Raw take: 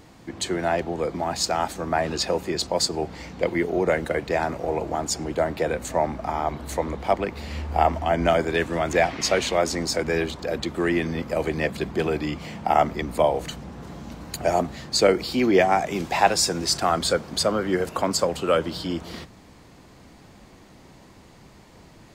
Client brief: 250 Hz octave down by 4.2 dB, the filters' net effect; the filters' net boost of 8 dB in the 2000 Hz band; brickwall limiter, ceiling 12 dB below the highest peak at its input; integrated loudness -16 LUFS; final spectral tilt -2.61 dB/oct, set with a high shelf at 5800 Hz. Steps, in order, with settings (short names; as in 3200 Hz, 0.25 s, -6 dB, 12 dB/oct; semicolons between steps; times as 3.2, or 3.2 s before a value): bell 250 Hz -6.5 dB; bell 2000 Hz +9 dB; high shelf 5800 Hz +6.5 dB; gain +8.5 dB; limiter -2.5 dBFS